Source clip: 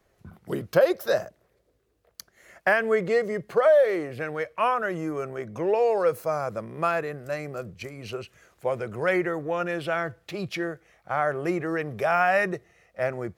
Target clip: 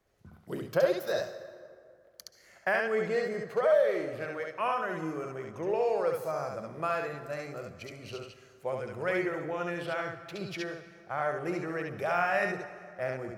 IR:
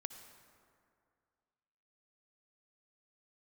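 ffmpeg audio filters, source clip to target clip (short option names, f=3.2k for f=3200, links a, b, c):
-filter_complex "[0:a]asplit=2[a][b];[b]equalizer=f=5.2k:t=o:w=1.5:g=8.5[c];[1:a]atrim=start_sample=2205,highshelf=f=9.2k:g=-6,adelay=69[d];[c][d]afir=irnorm=-1:irlink=0,volume=-1dB[e];[a][e]amix=inputs=2:normalize=0,volume=-7.5dB"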